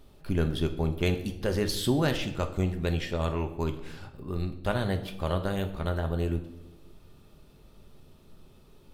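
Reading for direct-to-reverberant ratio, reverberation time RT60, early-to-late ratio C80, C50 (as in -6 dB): 6.0 dB, 0.95 s, 14.0 dB, 11.5 dB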